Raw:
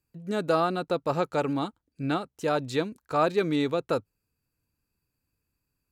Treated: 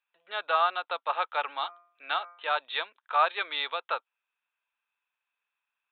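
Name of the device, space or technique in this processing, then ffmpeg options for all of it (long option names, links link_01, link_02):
musical greeting card: -filter_complex "[0:a]aresample=8000,aresample=44100,highpass=frequency=820:width=0.5412,highpass=frequency=820:width=1.3066,equalizer=frequency=3500:width_type=o:width=0.44:gain=6,asplit=3[link_01][link_02][link_03];[link_01]afade=type=out:start_time=1.59:duration=0.02[link_04];[link_02]bandreject=frequency=173.8:width_type=h:width=4,bandreject=frequency=347.6:width_type=h:width=4,bandreject=frequency=521.4:width_type=h:width=4,bandreject=frequency=695.2:width_type=h:width=4,bandreject=frequency=869:width_type=h:width=4,bandreject=frequency=1042.8:width_type=h:width=4,bandreject=frequency=1216.6:width_type=h:width=4,bandreject=frequency=1390.4:width_type=h:width=4,bandreject=frequency=1564.2:width_type=h:width=4,bandreject=frequency=1738:width_type=h:width=4,bandreject=frequency=1911.8:width_type=h:width=4,bandreject=frequency=2085.6:width_type=h:width=4,bandreject=frequency=2259.4:width_type=h:width=4,bandreject=frequency=2433.2:width_type=h:width=4,afade=type=in:start_time=1.59:duration=0.02,afade=type=out:start_time=2.55:duration=0.02[link_05];[link_03]afade=type=in:start_time=2.55:duration=0.02[link_06];[link_04][link_05][link_06]amix=inputs=3:normalize=0,volume=4dB"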